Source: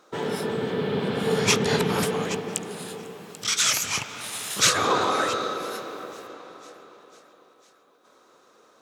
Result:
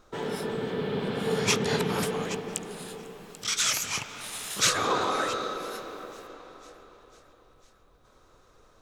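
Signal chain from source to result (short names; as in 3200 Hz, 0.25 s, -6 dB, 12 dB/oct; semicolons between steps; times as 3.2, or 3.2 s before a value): added noise brown -57 dBFS; gain -4 dB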